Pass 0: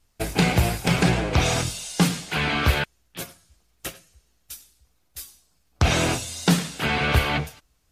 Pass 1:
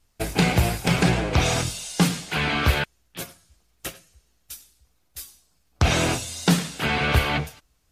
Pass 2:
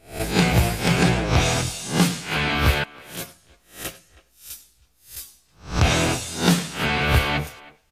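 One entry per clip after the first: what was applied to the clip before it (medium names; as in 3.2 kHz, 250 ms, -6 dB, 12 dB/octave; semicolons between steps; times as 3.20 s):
no audible change
reverse spectral sustain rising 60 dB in 0.37 s; speakerphone echo 320 ms, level -20 dB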